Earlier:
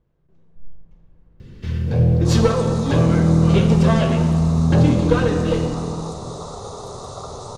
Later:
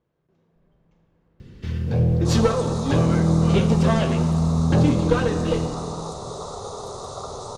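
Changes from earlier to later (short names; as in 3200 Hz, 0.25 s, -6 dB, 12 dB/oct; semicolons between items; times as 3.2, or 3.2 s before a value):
speech: add HPF 270 Hz 6 dB/oct; first sound: send -6.0 dB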